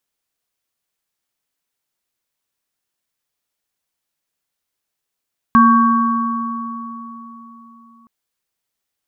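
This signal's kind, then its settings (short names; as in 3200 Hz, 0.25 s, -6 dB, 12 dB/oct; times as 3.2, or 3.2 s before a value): sine partials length 2.52 s, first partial 232 Hz, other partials 1120/1580 Hz, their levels 2/-11 dB, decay 3.86 s, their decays 3.59/1.91 s, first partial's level -9.5 dB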